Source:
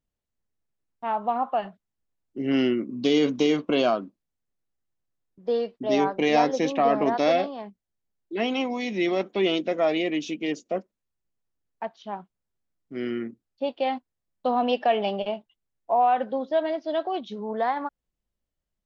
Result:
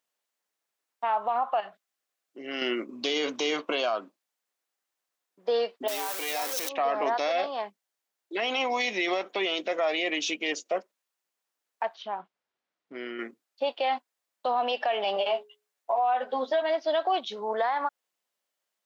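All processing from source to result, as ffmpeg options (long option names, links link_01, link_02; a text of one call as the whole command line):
ffmpeg -i in.wav -filter_complex "[0:a]asettb=1/sr,asplit=3[link_01][link_02][link_03];[link_01]atrim=end=1.604[link_04];[link_02]atrim=start=1.6:end=2.62,asetpts=PTS-STARTPTS,afade=type=in:duration=0.004:curve=qsin,afade=type=out:start_time=1.016:duration=0.004:curve=qsin,acompressor=threshold=-46dB:ratio=1.5:attack=3.2:release=140:knee=1:detection=peak,asuperstop=centerf=920:order=4:qfactor=6.6[link_05];[link_03]atrim=start=2.616[link_06];[link_04][link_05]acrossfade=duration=0.004:curve1=hsin:curve2=qsin[link_07];[link_07][link_06]acrossfade=duration=0.004:curve1=qsin:curve2=hsin,asettb=1/sr,asplit=3[link_08][link_09][link_10];[link_08]atrim=end=5.884[link_11];[link_09]atrim=start=5.88:end=6.69,asetpts=PTS-STARTPTS,afade=type=in:duration=0.004:curve=qsin,afade=type=out:start_time=0.806:duration=0.004:curve=qsin,aeval=exprs='val(0)+0.5*0.0668*sgn(val(0))':channel_layout=same,aemphasis=mode=production:type=75kf[link_12];[link_10]atrim=start=6.686[link_13];[link_11][link_12]acrossfade=duration=0.004:curve1=hsin:curve2=qsin[link_14];[link_14][link_13]acrossfade=duration=0.004:curve1=qsin:curve2=hsin,asettb=1/sr,asplit=3[link_15][link_16][link_17];[link_15]atrim=end=11.954[link_18];[link_16]atrim=start=11.95:end=13.19,asetpts=PTS-STARTPTS,afade=type=in:duration=0.004:curve=qsin,afade=type=out:start_time=1.236:duration=0.004:curve=qsin,lowpass=4200,lowshelf=frequency=370:gain=7,acompressor=threshold=-37dB:ratio=2:attack=3.2:release=140:knee=1:detection=peak[link_19];[link_17]atrim=start=13.186[link_20];[link_18][link_19]acrossfade=duration=0.004:curve1=hsin:curve2=qsin[link_21];[link_21][link_20]acrossfade=duration=0.004:curve1=qsin:curve2=hsin,asettb=1/sr,asplit=3[link_22][link_23][link_24];[link_22]atrim=end=15.154[link_25];[link_23]atrim=start=15.15:end=16.62,asetpts=PTS-STARTPTS,afade=type=in:duration=0.004:curve=qsin,afade=type=out:start_time=1.466:duration=0.004:curve=qsin,bandreject=frequency=60:width_type=h:width=6,bandreject=frequency=120:width_type=h:width=6,bandreject=frequency=180:width_type=h:width=6,bandreject=frequency=240:width_type=h:width=6,bandreject=frequency=300:width_type=h:width=6,bandreject=frequency=360:width_type=h:width=6,bandreject=frequency=420:width_type=h:width=6,asplit=2[link_26][link_27];[link_27]adelay=12,volume=-3dB[link_28];[link_26][link_28]amix=inputs=2:normalize=0,atrim=end_sample=64827[link_29];[link_24]atrim=start=16.616[link_30];[link_25][link_29]acrossfade=duration=0.004:curve1=hsin:curve2=qsin[link_31];[link_31][link_30]acrossfade=duration=0.004:curve1=qsin:curve2=hsin,highpass=680,acompressor=threshold=-29dB:ratio=4,alimiter=level_in=2.5dB:limit=-24dB:level=0:latency=1:release=32,volume=-2.5dB,volume=8.5dB" out.wav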